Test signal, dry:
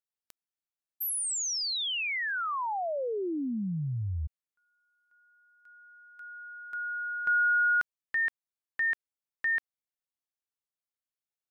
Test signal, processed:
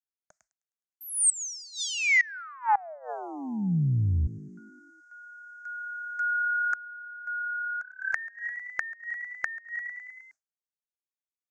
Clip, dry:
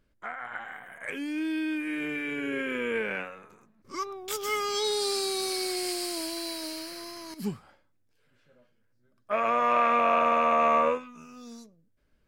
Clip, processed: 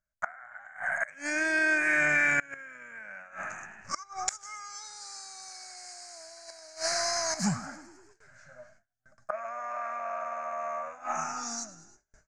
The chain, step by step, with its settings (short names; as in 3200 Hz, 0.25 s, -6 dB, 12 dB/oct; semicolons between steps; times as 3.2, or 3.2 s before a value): EQ curve 170 Hz 0 dB, 430 Hz -23 dB, 620 Hz +10 dB, 1000 Hz +1 dB, 1500 Hz +11 dB, 2200 Hz +3 dB, 3300 Hz -20 dB, 6600 Hz +7 dB, 9400 Hz -10 dB, 15000 Hz -26 dB; frequency-shifting echo 0.104 s, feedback 65%, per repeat +35 Hz, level -17 dB; gate with hold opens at -56 dBFS, closes at -63 dBFS, hold 24 ms, range -28 dB; band shelf 5700 Hz +9.5 dB; flipped gate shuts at -22 dBFS, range -25 dB; gain +7.5 dB